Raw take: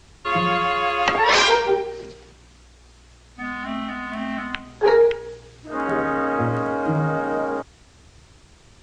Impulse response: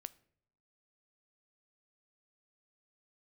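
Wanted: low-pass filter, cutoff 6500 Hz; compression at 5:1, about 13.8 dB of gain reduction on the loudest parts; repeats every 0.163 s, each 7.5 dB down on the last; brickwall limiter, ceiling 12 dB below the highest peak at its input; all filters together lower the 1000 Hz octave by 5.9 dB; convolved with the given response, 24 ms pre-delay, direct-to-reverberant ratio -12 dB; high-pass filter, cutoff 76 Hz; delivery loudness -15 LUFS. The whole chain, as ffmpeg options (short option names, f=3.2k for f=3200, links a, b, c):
-filter_complex "[0:a]highpass=76,lowpass=6.5k,equalizer=f=1k:t=o:g=-7.5,acompressor=threshold=-29dB:ratio=5,alimiter=level_in=1.5dB:limit=-24dB:level=0:latency=1,volume=-1.5dB,aecho=1:1:163|326|489|652|815:0.422|0.177|0.0744|0.0312|0.0131,asplit=2[a][b];[1:a]atrim=start_sample=2205,adelay=24[c];[b][c]afir=irnorm=-1:irlink=0,volume=17dB[d];[a][d]amix=inputs=2:normalize=0,volume=6.5dB"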